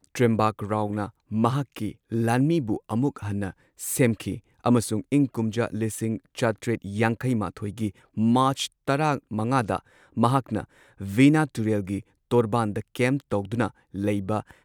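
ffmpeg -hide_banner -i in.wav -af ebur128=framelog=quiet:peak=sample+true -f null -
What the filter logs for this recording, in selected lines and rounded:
Integrated loudness:
  I:         -25.6 LUFS
  Threshold: -35.7 LUFS
Loudness range:
  LRA:         2.3 LU
  Threshold: -45.6 LUFS
  LRA low:   -26.8 LUFS
  LRA high:  -24.5 LUFS
Sample peak:
  Peak:       -7.1 dBFS
True peak:
  Peak:       -7.1 dBFS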